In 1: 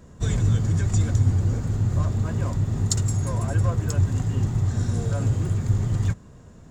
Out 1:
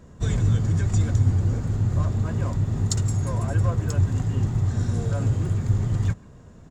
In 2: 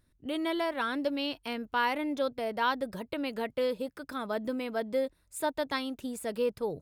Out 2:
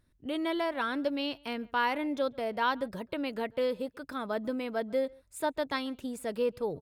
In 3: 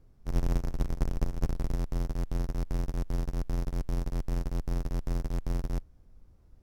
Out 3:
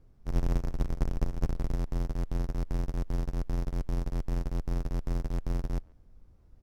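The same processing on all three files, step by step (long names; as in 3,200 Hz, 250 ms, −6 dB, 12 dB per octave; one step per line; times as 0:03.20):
high-shelf EQ 5,700 Hz −5 dB
far-end echo of a speakerphone 140 ms, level −25 dB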